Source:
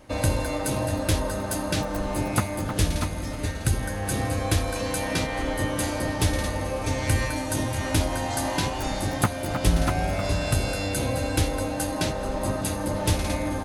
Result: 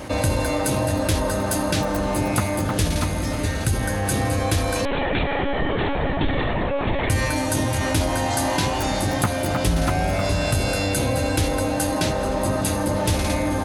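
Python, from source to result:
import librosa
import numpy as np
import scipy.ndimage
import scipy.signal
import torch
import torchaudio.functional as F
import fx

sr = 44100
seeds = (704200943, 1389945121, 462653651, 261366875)

y = scipy.signal.sosfilt(scipy.signal.butter(2, 47.0, 'highpass', fs=sr, output='sos'), x)
y = fx.lpc_monotone(y, sr, seeds[0], pitch_hz=280.0, order=16, at=(4.85, 7.1))
y = fx.env_flatten(y, sr, amount_pct=50)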